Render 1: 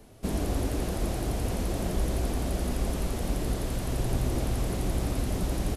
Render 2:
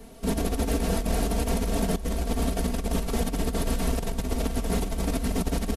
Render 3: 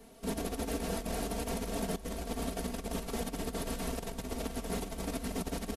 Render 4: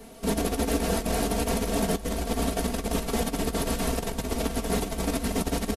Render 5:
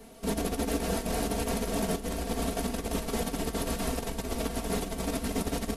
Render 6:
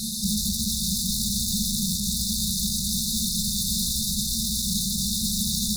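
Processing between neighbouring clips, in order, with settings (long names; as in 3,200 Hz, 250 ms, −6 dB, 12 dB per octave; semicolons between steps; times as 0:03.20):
comb filter 4.4 ms, depth 82%; compressor whose output falls as the input rises −27 dBFS, ratio −0.5; level +2 dB
low-shelf EQ 140 Hz −8.5 dB; level −6.5 dB
double-tracking delay 14 ms −13 dB; level +9 dB
echo with a time of its own for lows and highs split 310 Hz, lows 210 ms, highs 725 ms, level −12 dB; level −4 dB
mid-hump overdrive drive 40 dB, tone 4,800 Hz, clips at −17 dBFS; brick-wall band-stop 230–3,500 Hz; level +4.5 dB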